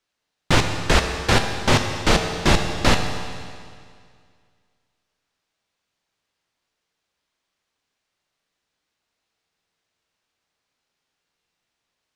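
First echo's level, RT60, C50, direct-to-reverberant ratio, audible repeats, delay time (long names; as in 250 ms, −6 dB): no echo audible, 2.1 s, 5.5 dB, 4.5 dB, no echo audible, no echo audible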